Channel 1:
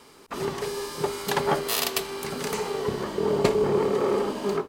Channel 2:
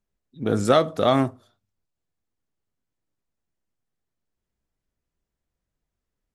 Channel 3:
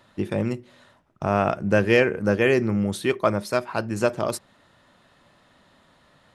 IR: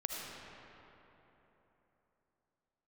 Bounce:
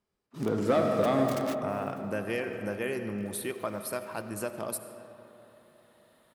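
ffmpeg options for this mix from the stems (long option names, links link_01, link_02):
-filter_complex "[0:a]aeval=exprs='(mod(8.91*val(0)+1,2)-1)/8.91':channel_layout=same,volume=-16dB,asplit=2[link_01][link_02];[link_02]volume=-21.5dB[link_03];[1:a]lowpass=frequency=1400:poles=1,asoftclip=type=tanh:threshold=-13dB,volume=1dB,asplit=3[link_04][link_05][link_06];[link_05]volume=-7.5dB[link_07];[2:a]aexciter=amount=7.2:drive=4.5:freq=9100,adelay=400,volume=-9.5dB,asplit=2[link_08][link_09];[link_09]volume=-11.5dB[link_10];[link_06]apad=whole_len=206766[link_11];[link_01][link_11]sidechaingate=range=-33dB:threshold=-54dB:ratio=16:detection=peak[link_12];[link_04][link_08]amix=inputs=2:normalize=0,acompressor=threshold=-33dB:ratio=6,volume=0dB[link_13];[3:a]atrim=start_sample=2205[link_14];[link_03][link_07][link_10]amix=inputs=3:normalize=0[link_15];[link_15][link_14]afir=irnorm=-1:irlink=0[link_16];[link_12][link_13][link_16]amix=inputs=3:normalize=0,highpass=frequency=130:poles=1"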